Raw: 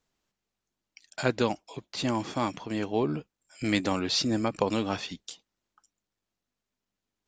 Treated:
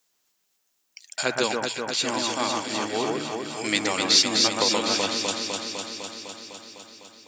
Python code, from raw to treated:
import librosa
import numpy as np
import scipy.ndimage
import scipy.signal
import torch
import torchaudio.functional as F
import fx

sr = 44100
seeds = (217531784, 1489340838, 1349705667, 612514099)

y = fx.riaa(x, sr, side='recording')
y = fx.hum_notches(y, sr, base_hz=60, count=2)
y = fx.echo_alternate(y, sr, ms=126, hz=2000.0, feedback_pct=85, wet_db=-2)
y = y * librosa.db_to_amplitude(2.0)